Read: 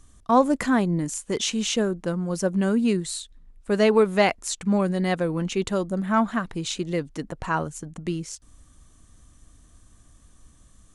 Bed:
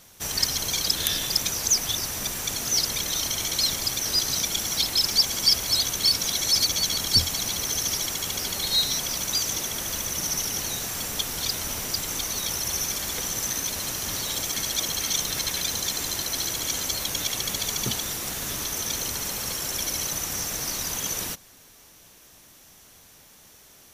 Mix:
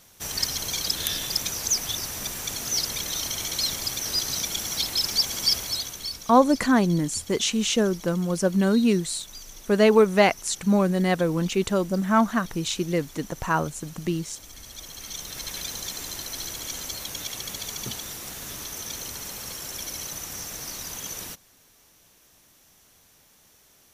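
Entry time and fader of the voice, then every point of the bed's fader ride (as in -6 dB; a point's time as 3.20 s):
6.00 s, +1.5 dB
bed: 5.57 s -2.5 dB
6.37 s -17.5 dB
14.55 s -17.5 dB
15.56 s -6 dB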